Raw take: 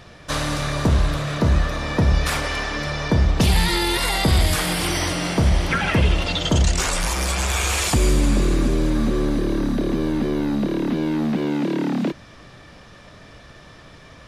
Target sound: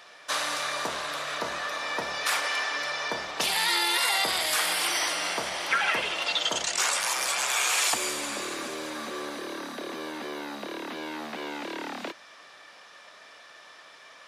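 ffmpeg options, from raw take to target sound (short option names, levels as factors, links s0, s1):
-af "highpass=750,volume=0.841"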